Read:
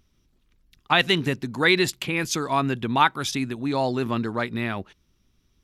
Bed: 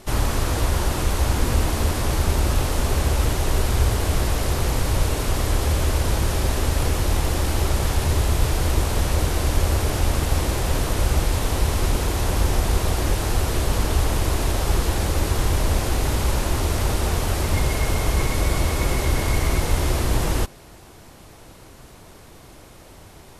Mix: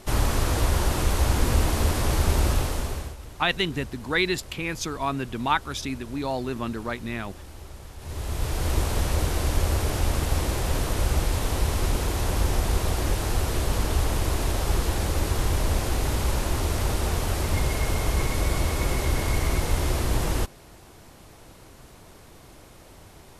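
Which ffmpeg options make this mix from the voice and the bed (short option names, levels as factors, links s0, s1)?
-filter_complex "[0:a]adelay=2500,volume=0.596[s0];[1:a]volume=6.31,afade=t=out:st=2.45:d=0.71:silence=0.105925,afade=t=in:st=7.98:d=0.79:silence=0.133352[s1];[s0][s1]amix=inputs=2:normalize=0"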